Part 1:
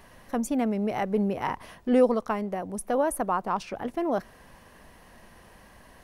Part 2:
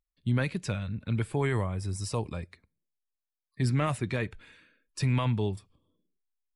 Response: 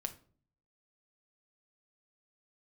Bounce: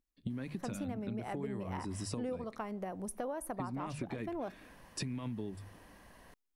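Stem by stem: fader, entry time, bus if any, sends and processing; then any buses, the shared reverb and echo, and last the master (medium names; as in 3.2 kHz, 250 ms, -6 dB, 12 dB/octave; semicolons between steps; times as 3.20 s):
-7.5 dB, 0.30 s, send -10 dB, none
-0.5 dB, 0.00 s, no send, peaking EQ 270 Hz +13 dB 1.1 oct; hum notches 50/100/150 Hz; compression, threshold -28 dBFS, peak gain reduction 12.5 dB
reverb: on, RT60 0.45 s, pre-delay 6 ms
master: compression 6:1, threshold -36 dBFS, peak gain reduction 15 dB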